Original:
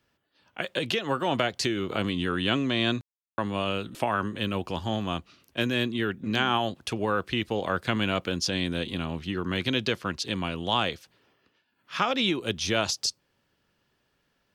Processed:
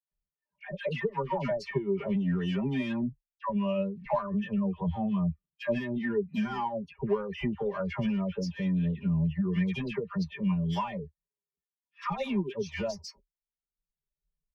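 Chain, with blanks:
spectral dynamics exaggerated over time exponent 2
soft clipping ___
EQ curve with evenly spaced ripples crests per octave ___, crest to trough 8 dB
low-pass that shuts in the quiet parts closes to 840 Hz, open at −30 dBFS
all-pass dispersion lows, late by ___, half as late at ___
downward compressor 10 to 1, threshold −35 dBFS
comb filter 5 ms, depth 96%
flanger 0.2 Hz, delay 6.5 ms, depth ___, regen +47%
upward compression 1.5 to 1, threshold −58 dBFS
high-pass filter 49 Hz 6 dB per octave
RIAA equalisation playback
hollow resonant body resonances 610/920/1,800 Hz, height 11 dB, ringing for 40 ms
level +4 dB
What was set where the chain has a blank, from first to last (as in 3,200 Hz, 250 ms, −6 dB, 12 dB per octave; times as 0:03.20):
−25 dBFS, 0.83, 114 ms, 1,200 Hz, 1.1 ms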